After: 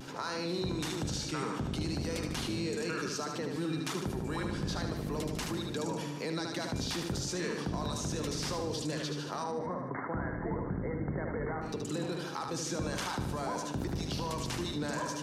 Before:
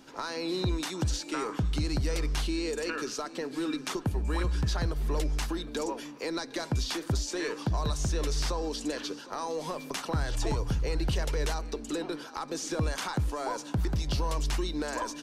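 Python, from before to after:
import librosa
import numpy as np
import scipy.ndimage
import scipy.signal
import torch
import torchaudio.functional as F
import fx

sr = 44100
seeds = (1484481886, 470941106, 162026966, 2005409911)

y = fx.octave_divider(x, sr, octaves=1, level_db=3.0)
y = scipy.signal.sosfilt(scipy.signal.butter(2, 130.0, 'highpass', fs=sr, output='sos'), y)
y = fx.vibrato(y, sr, rate_hz=0.6, depth_cents=27.0)
y = fx.brickwall_lowpass(y, sr, high_hz=2200.0, at=(9.43, 11.61), fade=0.02)
y = fx.echo_feedback(y, sr, ms=75, feedback_pct=50, wet_db=-6)
y = fx.env_flatten(y, sr, amount_pct=50)
y = y * 10.0 ** (-6.5 / 20.0)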